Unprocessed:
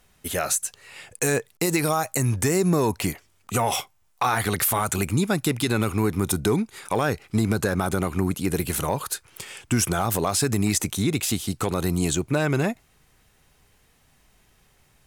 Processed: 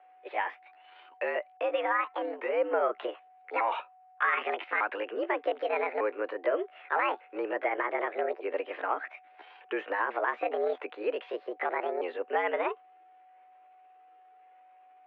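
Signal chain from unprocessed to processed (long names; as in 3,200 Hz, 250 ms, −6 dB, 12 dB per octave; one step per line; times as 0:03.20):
pitch shifter swept by a sawtooth +10 semitones, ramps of 1,201 ms
steady tone 650 Hz −52 dBFS
single-sideband voice off tune +93 Hz 310–2,500 Hz
level −3 dB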